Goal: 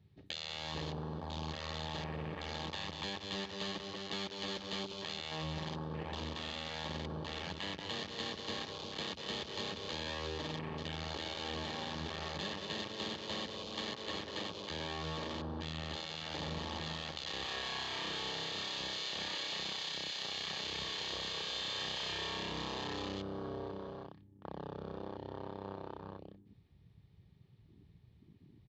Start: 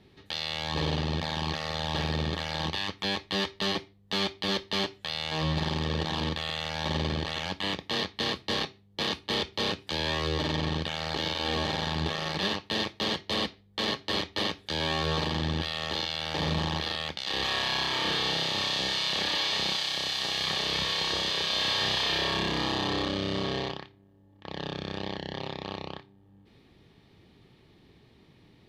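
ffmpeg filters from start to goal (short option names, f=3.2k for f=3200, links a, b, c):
-filter_complex "[0:a]aecho=1:1:118|186|188|206|350:0.15|0.398|0.168|0.112|0.335,acompressor=threshold=-39dB:ratio=3,asettb=1/sr,asplit=3[a][b][c];[a]atrim=end=14.024[d];[b]atrim=start=14.02:end=16.3,asetpts=PTS-STARTPTS,afade=t=in:d=0.004:c=qsin,afade=t=out:st=2.276:d=0.004:c=qsin,highshelf=f=7.9k:g=-7.5[e];[c]atrim=start=16.296[f];[d][e]acrossfade=d=0.004:c1=hsin:c2=qsin[g];[g][f]acrossfade=d=0.004:c1=qsin:c2=hsin,afwtdn=0.00631,volume=-1dB"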